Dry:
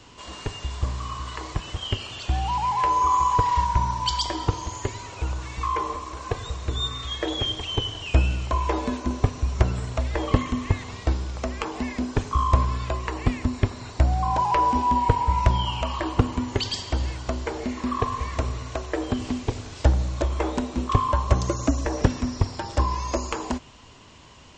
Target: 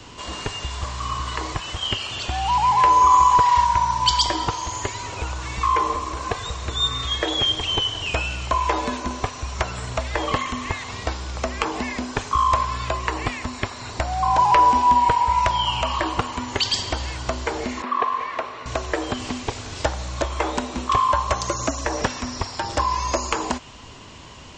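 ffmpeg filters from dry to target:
ffmpeg -i in.wav -filter_complex "[0:a]acrossover=split=630|770[link_01][link_02][link_03];[link_01]acompressor=threshold=-34dB:ratio=6[link_04];[link_04][link_02][link_03]amix=inputs=3:normalize=0,asettb=1/sr,asplit=3[link_05][link_06][link_07];[link_05]atrim=end=17.824[link_08];[link_06]atrim=start=17.82:end=18.66,asetpts=PTS-STARTPTS,afade=type=in:duration=0.004:curve=qsin,afade=type=out:start_time=0.836:duration=0.004:curve=qsin,highpass=350,lowpass=2700[link_09];[link_07]atrim=start=18.656[link_10];[link_08][link_09]acrossfade=duration=0.004:curve1=hsin:curve2=qsin[link_11];[link_11][link_10]acrossfade=duration=0.004:curve1=qsin:curve2=hsin,volume=7dB" out.wav

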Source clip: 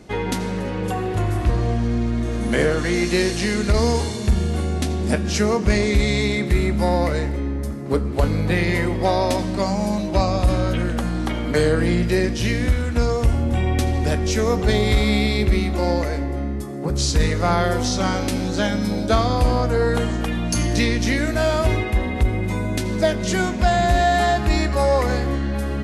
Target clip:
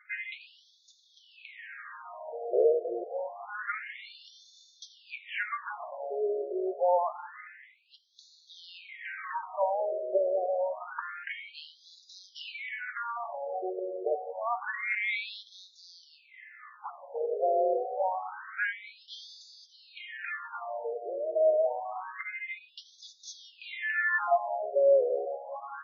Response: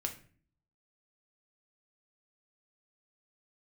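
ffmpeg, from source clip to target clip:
-af "highshelf=frequency=2800:width_type=q:width=1.5:gain=-9,afftfilt=real='re*between(b*sr/1024,490*pow(4900/490,0.5+0.5*sin(2*PI*0.27*pts/sr))/1.41,490*pow(4900/490,0.5+0.5*sin(2*PI*0.27*pts/sr))*1.41)':imag='im*between(b*sr/1024,490*pow(4900/490,0.5+0.5*sin(2*PI*0.27*pts/sr))/1.41,490*pow(4900/490,0.5+0.5*sin(2*PI*0.27*pts/sr))*1.41)':win_size=1024:overlap=0.75,volume=-2.5dB"

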